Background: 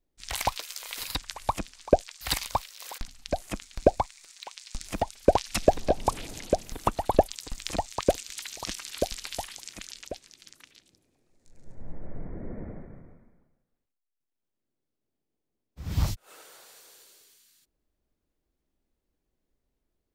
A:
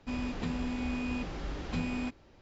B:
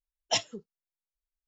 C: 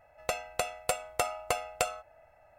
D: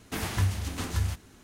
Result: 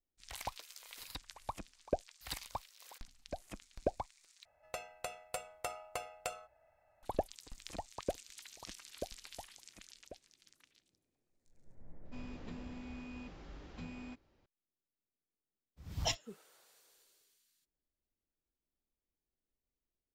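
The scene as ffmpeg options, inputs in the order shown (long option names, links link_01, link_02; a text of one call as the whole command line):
ffmpeg -i bed.wav -i cue0.wav -i cue1.wav -i cue2.wav -filter_complex "[0:a]volume=-14.5dB[link_01];[3:a]bandreject=frequency=60:width_type=h:width=6,bandreject=frequency=120:width_type=h:width=6,bandreject=frequency=180:width_type=h:width=6,bandreject=frequency=240:width_type=h:width=6,bandreject=frequency=300:width_type=h:width=6,bandreject=frequency=360:width_type=h:width=6,bandreject=frequency=420:width_type=h:width=6,bandreject=frequency=480:width_type=h:width=6[link_02];[link_01]asplit=2[link_03][link_04];[link_03]atrim=end=4.454[link_05];[link_02]atrim=end=2.58,asetpts=PTS-STARTPTS,volume=-11dB[link_06];[link_04]atrim=start=7.026[link_07];[1:a]atrim=end=2.41,asetpts=PTS-STARTPTS,volume=-13.5dB,afade=type=in:duration=0.004:curve=hsin,afade=type=out:start_time=2.406:duration=0.004:curve=hsin,adelay=12050[link_08];[2:a]atrim=end=1.47,asetpts=PTS-STARTPTS,volume=-8dB,afade=type=in:duration=0.004:curve=hsin,afade=type=out:start_time=1.466:duration=0.004:curve=hsin,adelay=15740[link_09];[link_05][link_06]acrossfade=duration=0.004:curve1=hsin:curve2=hsin[link_10];[link_10][link_07]acrossfade=duration=0.004:curve1=hsin:curve2=hsin[link_11];[link_11][link_08][link_09]amix=inputs=3:normalize=0" out.wav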